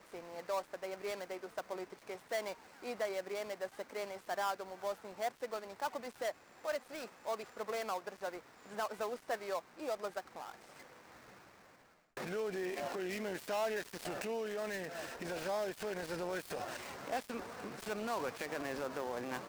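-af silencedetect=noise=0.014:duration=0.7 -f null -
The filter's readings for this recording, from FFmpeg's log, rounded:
silence_start: 10.50
silence_end: 12.17 | silence_duration: 1.67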